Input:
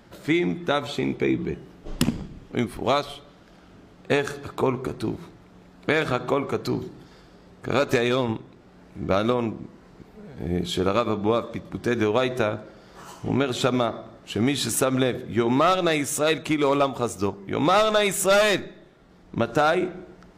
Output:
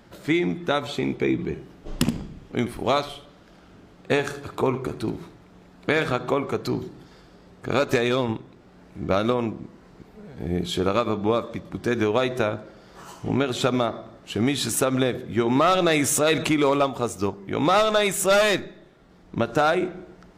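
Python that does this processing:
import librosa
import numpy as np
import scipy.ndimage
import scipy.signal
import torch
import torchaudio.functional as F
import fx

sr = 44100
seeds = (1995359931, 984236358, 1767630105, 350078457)

y = fx.echo_single(x, sr, ms=76, db=-14.5, at=(1.31, 6.08))
y = fx.env_flatten(y, sr, amount_pct=50, at=(15.55, 16.7))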